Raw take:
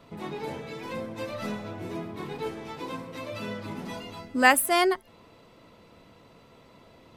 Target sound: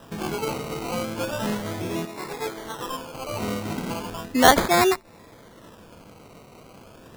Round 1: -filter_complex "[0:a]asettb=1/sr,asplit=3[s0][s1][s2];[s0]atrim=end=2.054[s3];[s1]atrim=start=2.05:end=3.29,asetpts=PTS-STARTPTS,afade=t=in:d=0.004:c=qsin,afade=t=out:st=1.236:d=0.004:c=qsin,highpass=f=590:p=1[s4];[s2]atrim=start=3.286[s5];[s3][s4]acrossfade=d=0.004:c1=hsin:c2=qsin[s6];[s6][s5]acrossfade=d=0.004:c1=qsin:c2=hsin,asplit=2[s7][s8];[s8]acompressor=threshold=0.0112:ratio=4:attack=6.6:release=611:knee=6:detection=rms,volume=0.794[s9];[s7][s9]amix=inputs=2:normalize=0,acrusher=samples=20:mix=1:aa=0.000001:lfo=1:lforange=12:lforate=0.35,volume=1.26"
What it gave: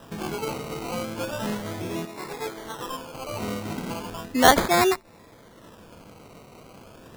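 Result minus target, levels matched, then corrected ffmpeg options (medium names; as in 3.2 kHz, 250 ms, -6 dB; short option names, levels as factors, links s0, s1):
compression: peak gain reduction +9 dB
-filter_complex "[0:a]asettb=1/sr,asplit=3[s0][s1][s2];[s0]atrim=end=2.054[s3];[s1]atrim=start=2.05:end=3.29,asetpts=PTS-STARTPTS,afade=t=in:d=0.004:c=qsin,afade=t=out:st=1.236:d=0.004:c=qsin,highpass=f=590:p=1[s4];[s2]atrim=start=3.286[s5];[s3][s4]acrossfade=d=0.004:c1=hsin:c2=qsin[s6];[s6][s5]acrossfade=d=0.004:c1=qsin:c2=hsin,asplit=2[s7][s8];[s8]acompressor=threshold=0.0447:ratio=4:attack=6.6:release=611:knee=6:detection=rms,volume=0.794[s9];[s7][s9]amix=inputs=2:normalize=0,acrusher=samples=20:mix=1:aa=0.000001:lfo=1:lforange=12:lforate=0.35,volume=1.26"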